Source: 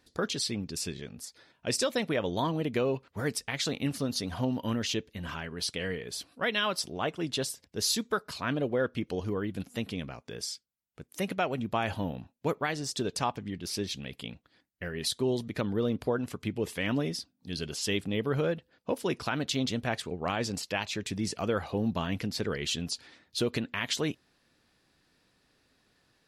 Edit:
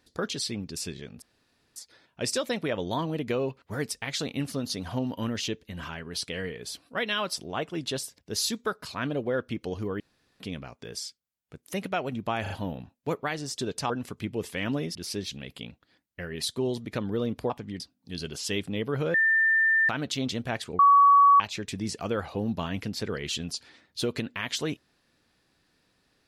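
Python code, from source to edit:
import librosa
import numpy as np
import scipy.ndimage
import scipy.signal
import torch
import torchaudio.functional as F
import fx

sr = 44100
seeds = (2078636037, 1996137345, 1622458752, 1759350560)

y = fx.edit(x, sr, fx.insert_room_tone(at_s=1.22, length_s=0.54),
    fx.room_tone_fill(start_s=9.46, length_s=0.4),
    fx.stutter(start_s=11.88, slice_s=0.04, count=3),
    fx.swap(start_s=13.28, length_s=0.3, other_s=16.13, other_length_s=1.05),
    fx.bleep(start_s=18.52, length_s=0.75, hz=1790.0, db=-19.0),
    fx.bleep(start_s=20.17, length_s=0.61, hz=1130.0, db=-13.5), tone=tone)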